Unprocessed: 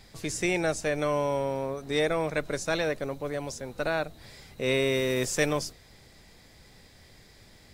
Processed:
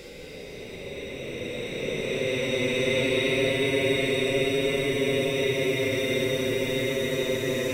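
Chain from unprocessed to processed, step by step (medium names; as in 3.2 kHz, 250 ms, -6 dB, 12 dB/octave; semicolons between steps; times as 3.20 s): reverse spectral sustain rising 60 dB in 0.69 s; Paulstretch 12×, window 0.05 s, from 4.44 s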